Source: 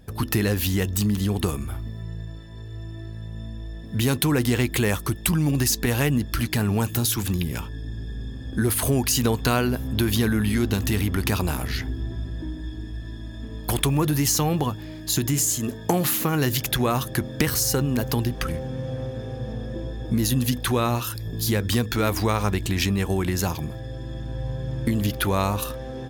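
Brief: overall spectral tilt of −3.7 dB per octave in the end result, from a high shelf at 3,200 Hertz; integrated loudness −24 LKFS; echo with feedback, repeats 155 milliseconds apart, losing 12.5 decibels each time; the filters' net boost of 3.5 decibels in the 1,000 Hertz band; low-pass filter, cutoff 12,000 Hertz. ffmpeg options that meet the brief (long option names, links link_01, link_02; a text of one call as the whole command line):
ffmpeg -i in.wav -af "lowpass=12000,equalizer=frequency=1000:width_type=o:gain=3.5,highshelf=frequency=3200:gain=8,aecho=1:1:155|310|465:0.237|0.0569|0.0137,volume=-3dB" out.wav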